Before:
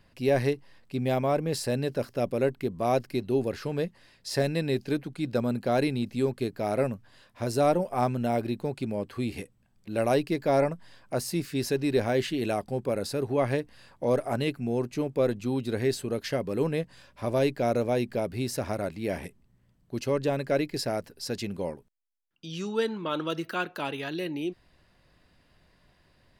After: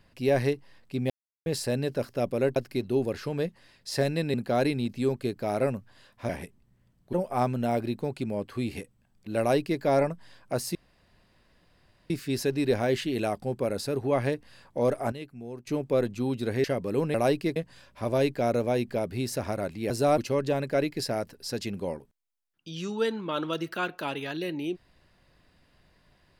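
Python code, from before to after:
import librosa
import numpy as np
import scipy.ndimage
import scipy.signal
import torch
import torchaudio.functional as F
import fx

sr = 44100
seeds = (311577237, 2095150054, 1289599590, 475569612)

y = fx.edit(x, sr, fx.silence(start_s=1.1, length_s=0.36),
    fx.cut(start_s=2.56, length_s=0.39),
    fx.cut(start_s=4.73, length_s=0.78),
    fx.swap(start_s=7.46, length_s=0.28, other_s=19.11, other_length_s=0.84),
    fx.duplicate(start_s=10.0, length_s=0.42, to_s=16.77),
    fx.insert_room_tone(at_s=11.36, length_s=1.35),
    fx.clip_gain(start_s=14.38, length_s=0.55, db=-11.5),
    fx.cut(start_s=15.9, length_s=0.37), tone=tone)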